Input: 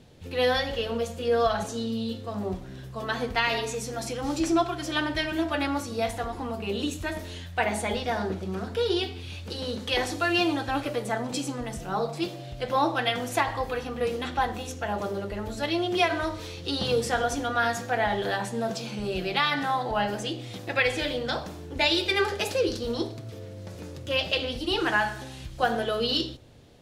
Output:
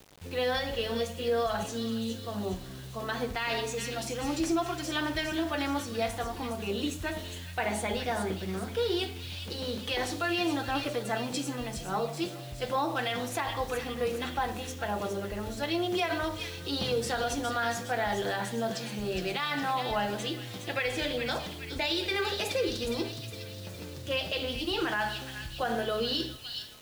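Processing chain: thin delay 0.413 s, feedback 53%, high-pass 2600 Hz, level -7 dB; limiter -18 dBFS, peak gain reduction 8.5 dB; requantised 8-bit, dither none; gain -2.5 dB

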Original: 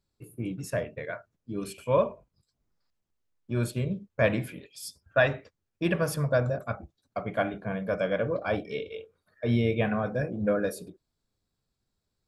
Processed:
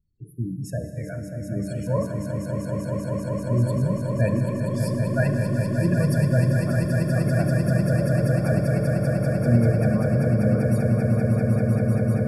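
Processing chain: spectral gate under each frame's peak -15 dB strong; tone controls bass +13 dB, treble +5 dB; swelling echo 0.195 s, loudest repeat 8, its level -6 dB; Schroeder reverb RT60 3.6 s, DRR 8 dB; gain -4 dB

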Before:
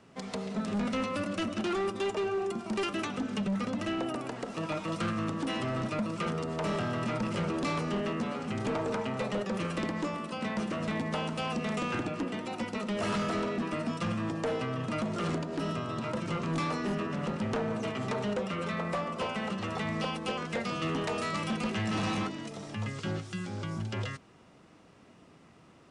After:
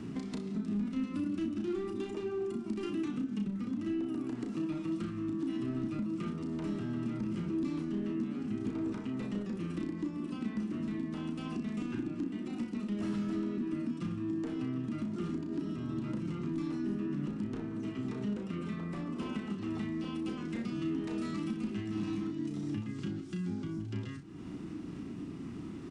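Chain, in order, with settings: resonant low shelf 410 Hz +9.5 dB, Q 3; compressor 4:1, threshold -47 dBFS, peak gain reduction 26 dB; on a send: early reflections 34 ms -5.5 dB, 62 ms -12.5 dB; on the sum: gain +7 dB

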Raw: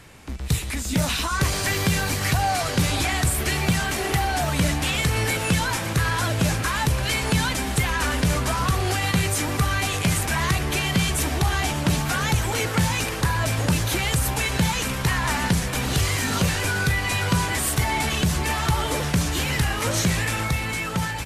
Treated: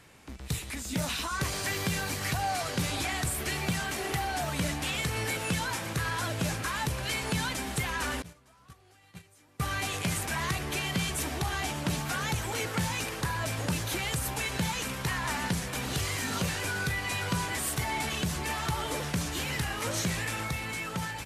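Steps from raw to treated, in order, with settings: 8.22–9.6 gate -16 dBFS, range -28 dB; low shelf 79 Hz -9 dB; gain -7.5 dB

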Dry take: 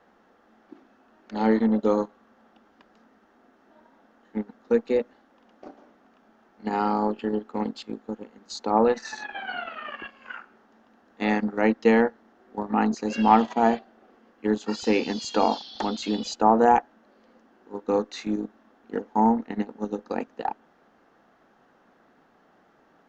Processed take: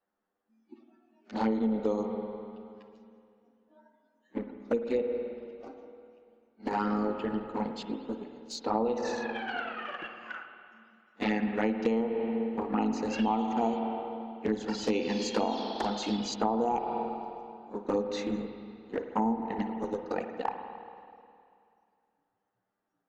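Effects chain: envelope flanger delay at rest 10.5 ms, full sweep at -18 dBFS; spectral noise reduction 22 dB; spring tank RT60 2.4 s, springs 49/53 ms, chirp 65 ms, DRR 6.5 dB; compressor 12:1, threshold -24 dBFS, peak gain reduction 11.5 dB

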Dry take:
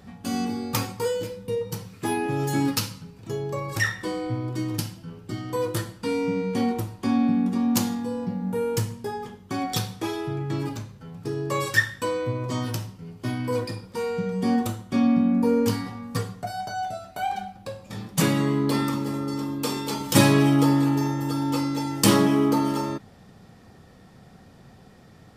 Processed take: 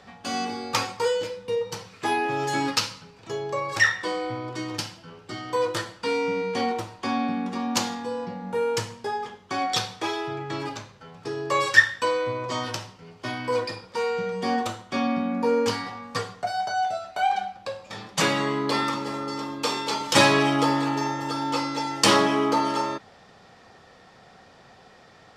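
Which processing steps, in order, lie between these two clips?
three-band isolator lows -15 dB, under 450 Hz, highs -21 dB, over 7200 Hz; gain +5.5 dB

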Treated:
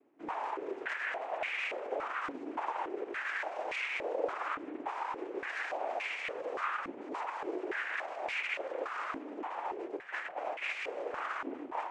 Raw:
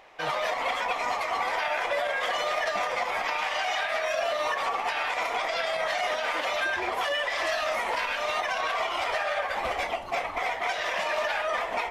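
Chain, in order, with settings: noise vocoder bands 4; stepped band-pass 3.5 Hz 280–2300 Hz

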